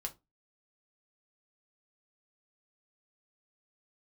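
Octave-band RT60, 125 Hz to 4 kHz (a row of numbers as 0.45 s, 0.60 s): 0.30 s, 0.30 s, 0.25 s, 0.20 s, 0.15 s, 0.15 s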